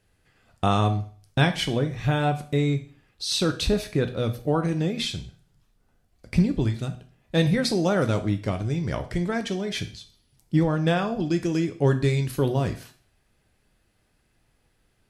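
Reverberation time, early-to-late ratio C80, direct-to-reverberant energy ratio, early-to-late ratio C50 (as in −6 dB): 0.45 s, 17.0 dB, 7.0 dB, 12.5 dB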